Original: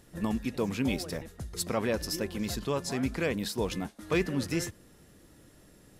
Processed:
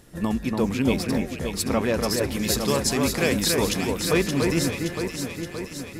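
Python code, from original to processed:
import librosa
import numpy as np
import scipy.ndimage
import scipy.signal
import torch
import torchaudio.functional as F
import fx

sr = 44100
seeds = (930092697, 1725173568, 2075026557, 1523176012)

p1 = fx.high_shelf(x, sr, hz=3500.0, db=10.0, at=(2.31, 3.76))
p2 = p1 + fx.echo_alternate(p1, sr, ms=286, hz=2200.0, feedback_pct=77, wet_db=-3, dry=0)
y = p2 * 10.0 ** (5.5 / 20.0)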